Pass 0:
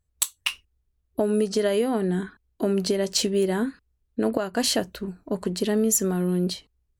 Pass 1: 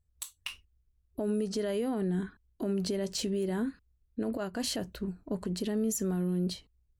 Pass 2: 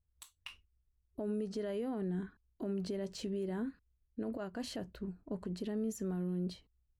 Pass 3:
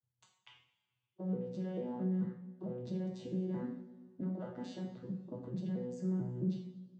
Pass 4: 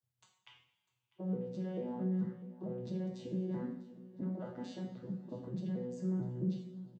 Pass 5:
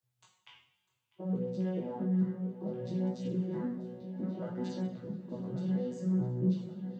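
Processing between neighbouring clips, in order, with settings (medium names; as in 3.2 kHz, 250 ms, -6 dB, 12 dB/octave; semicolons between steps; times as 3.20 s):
bass shelf 220 Hz +9 dB; peak limiter -16 dBFS, peak gain reduction 10 dB; trim -7.5 dB
treble shelf 4.1 kHz -10.5 dB; trim -6 dB
vocoder on a broken chord bare fifth, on B2, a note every 221 ms; two-slope reverb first 0.53 s, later 1.9 s, from -17 dB, DRR -1 dB; trim +2.5 dB
feedback delay 649 ms, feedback 45%, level -19 dB
feedback echo behind a low-pass 1132 ms, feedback 42%, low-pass 3.7 kHz, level -10 dB; chorus 0.63 Hz, delay 16 ms, depth 5.8 ms; trim +6.5 dB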